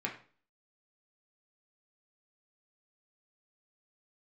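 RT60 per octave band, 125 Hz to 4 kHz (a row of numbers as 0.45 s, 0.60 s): 0.45 s, 0.45 s, 0.45 s, 0.40 s, 0.40 s, 0.35 s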